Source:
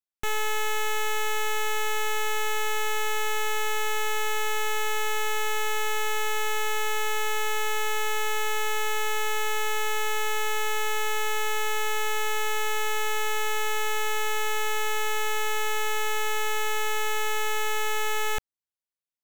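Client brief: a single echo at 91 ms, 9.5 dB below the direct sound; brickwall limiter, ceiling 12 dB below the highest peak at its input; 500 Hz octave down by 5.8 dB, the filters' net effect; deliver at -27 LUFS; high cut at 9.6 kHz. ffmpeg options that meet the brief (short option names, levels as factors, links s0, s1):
-af "lowpass=9600,equalizer=f=500:t=o:g=-7,alimiter=level_in=2.51:limit=0.0631:level=0:latency=1,volume=0.398,aecho=1:1:91:0.335,volume=5.01"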